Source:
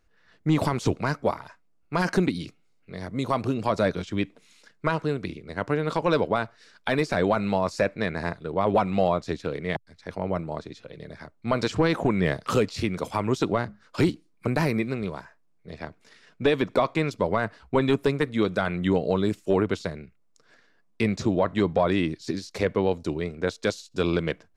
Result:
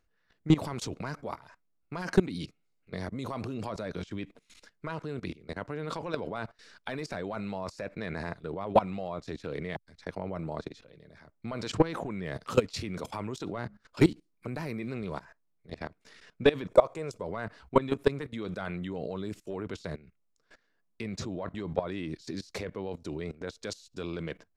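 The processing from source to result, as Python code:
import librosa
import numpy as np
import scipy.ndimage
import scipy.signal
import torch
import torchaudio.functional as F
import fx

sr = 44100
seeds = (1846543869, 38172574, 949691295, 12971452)

y = fx.level_steps(x, sr, step_db=19)
y = fx.graphic_eq(y, sr, hz=(250, 500, 2000, 4000, 8000), db=(-9, 8, -4, -8, 8), at=(16.68, 17.22))
y = F.gain(torch.from_numpy(y), 2.5).numpy()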